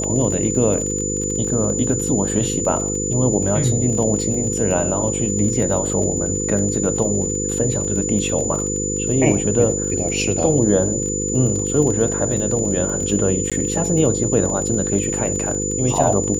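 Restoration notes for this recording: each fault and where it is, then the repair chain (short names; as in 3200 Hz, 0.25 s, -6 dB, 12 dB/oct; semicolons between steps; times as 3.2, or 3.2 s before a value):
buzz 50 Hz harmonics 10 -25 dBFS
crackle 28/s -25 dBFS
tone 7000 Hz -23 dBFS
13.5–13.52 gap 16 ms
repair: de-click; de-hum 50 Hz, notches 10; notch 7000 Hz, Q 30; interpolate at 13.5, 16 ms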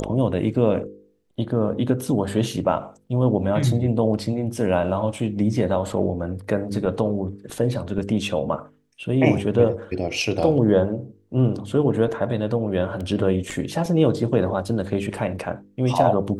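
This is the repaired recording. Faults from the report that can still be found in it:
none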